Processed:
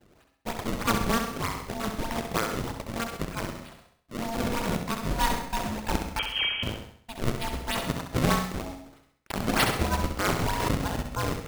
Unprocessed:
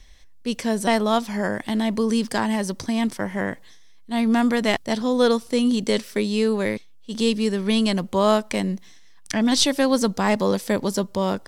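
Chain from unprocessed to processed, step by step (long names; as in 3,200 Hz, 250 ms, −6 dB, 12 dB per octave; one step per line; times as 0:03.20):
reverb reduction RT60 0.78 s
noise gate with hold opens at −43 dBFS
high-pass filter 470 Hz 12 dB per octave
ring modulation 460 Hz
in parallel at −2 dB: downward compressor, threshold −38 dBFS, peak gain reduction 19 dB
on the sum: sample-and-hold swept by an LFO 31×, swing 160% 3.2 Hz
0:06.19–0:06.63: voice inversion scrambler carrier 3,200 Hz
flutter between parallel walls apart 11.3 metres, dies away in 0.59 s
on a send at −11.5 dB: convolution reverb RT60 0.30 s, pre-delay 97 ms
0:03.51–0:04.76: on the sum: transient designer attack −7 dB, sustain +5 dB
0:10.39–0:10.98: background raised ahead of every attack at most 35 dB per second
level −1.5 dB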